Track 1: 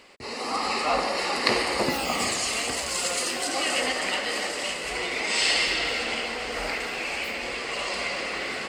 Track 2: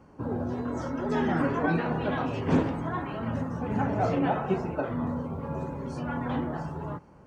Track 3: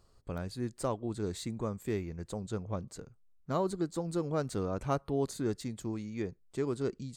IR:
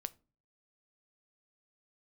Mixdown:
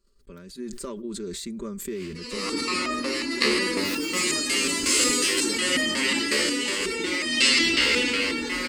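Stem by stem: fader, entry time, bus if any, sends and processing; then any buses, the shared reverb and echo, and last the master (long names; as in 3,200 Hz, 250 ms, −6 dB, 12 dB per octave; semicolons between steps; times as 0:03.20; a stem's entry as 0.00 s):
+0.5 dB, 1.95 s, no bus, no send, automatic gain control gain up to 6.5 dB; step-sequenced resonator 5.5 Hz 72–620 Hz
−5.0 dB, 2.35 s, bus A, no send, downward compressor, threshold −34 dBFS, peak gain reduction 14.5 dB; hollow resonant body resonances 310/860/1,700 Hz, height 17 dB
−7.0 dB, 0.00 s, bus A, no send, comb filter 5.1 ms, depth 70%
bus A: 0.0 dB, transient designer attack +5 dB, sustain 0 dB; downward compressor, threshold −38 dBFS, peak gain reduction 14 dB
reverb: not used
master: automatic gain control gain up to 9 dB; phaser with its sweep stopped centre 310 Hz, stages 4; level that may fall only so fast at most 26 dB per second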